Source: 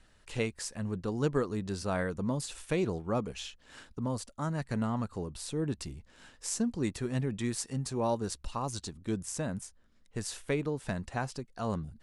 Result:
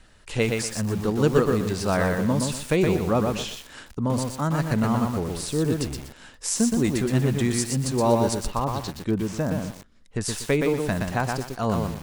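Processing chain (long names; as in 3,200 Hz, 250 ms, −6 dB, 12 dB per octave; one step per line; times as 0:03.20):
0:08.35–0:10.21: treble cut that deepens with the level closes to 1,400 Hz, closed at −29 dBFS
feedback echo at a low word length 121 ms, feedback 35%, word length 8 bits, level −3 dB
level +8.5 dB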